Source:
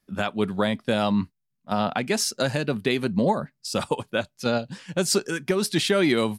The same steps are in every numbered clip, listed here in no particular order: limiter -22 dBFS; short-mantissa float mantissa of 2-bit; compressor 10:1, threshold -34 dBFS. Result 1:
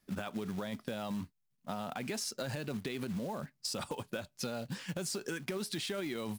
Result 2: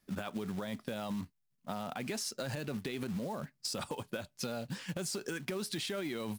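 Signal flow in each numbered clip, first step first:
short-mantissa float > limiter > compressor; limiter > compressor > short-mantissa float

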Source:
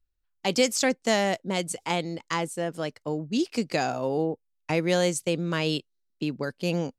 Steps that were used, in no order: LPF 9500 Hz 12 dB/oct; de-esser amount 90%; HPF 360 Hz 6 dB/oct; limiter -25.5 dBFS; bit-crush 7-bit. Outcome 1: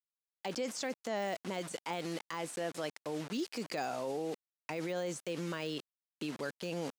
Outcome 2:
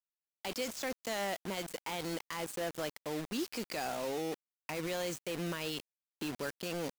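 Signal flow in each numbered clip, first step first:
bit-crush > LPF > de-esser > limiter > HPF; LPF > limiter > de-esser > HPF > bit-crush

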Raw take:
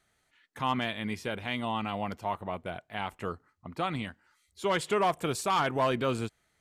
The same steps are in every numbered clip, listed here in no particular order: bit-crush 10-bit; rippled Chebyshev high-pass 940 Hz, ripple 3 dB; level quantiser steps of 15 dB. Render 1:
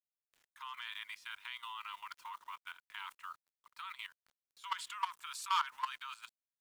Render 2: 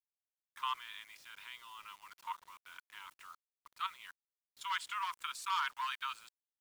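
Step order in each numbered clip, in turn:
rippled Chebyshev high-pass > bit-crush > level quantiser; level quantiser > rippled Chebyshev high-pass > bit-crush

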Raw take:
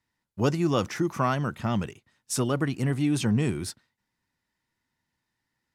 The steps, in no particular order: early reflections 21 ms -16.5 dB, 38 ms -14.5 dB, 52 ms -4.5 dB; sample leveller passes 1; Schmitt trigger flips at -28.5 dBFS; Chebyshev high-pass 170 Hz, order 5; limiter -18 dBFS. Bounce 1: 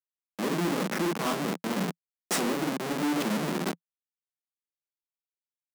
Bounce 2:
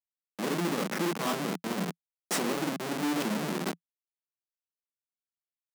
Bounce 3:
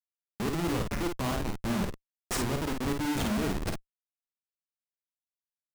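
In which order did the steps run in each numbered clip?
limiter > early reflections > Schmitt trigger > Chebyshev high-pass > sample leveller; early reflections > limiter > Schmitt trigger > sample leveller > Chebyshev high-pass; limiter > Chebyshev high-pass > Schmitt trigger > sample leveller > early reflections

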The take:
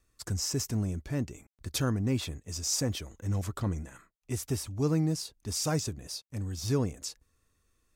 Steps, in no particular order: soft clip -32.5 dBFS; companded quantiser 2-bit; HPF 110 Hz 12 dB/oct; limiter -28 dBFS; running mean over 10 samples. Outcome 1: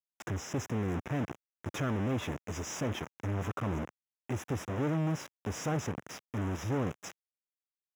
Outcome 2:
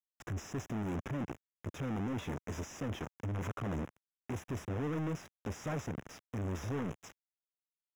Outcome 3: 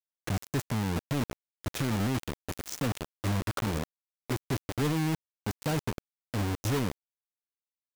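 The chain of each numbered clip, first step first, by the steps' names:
soft clip > companded quantiser > running mean > limiter > HPF; limiter > companded quantiser > HPF > soft clip > running mean; running mean > limiter > HPF > soft clip > companded quantiser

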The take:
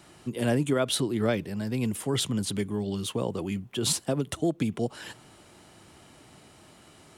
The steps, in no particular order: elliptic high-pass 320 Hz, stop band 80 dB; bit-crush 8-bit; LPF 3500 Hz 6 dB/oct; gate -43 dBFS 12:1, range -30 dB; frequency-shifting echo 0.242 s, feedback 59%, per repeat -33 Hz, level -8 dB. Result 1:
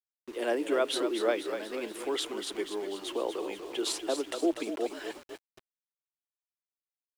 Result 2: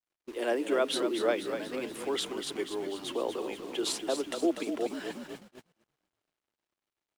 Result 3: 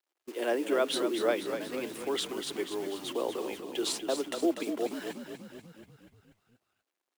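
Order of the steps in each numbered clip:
frequency-shifting echo > elliptic high-pass > gate > bit-crush > LPF; elliptic high-pass > frequency-shifting echo > bit-crush > LPF > gate; LPF > bit-crush > elliptic high-pass > gate > frequency-shifting echo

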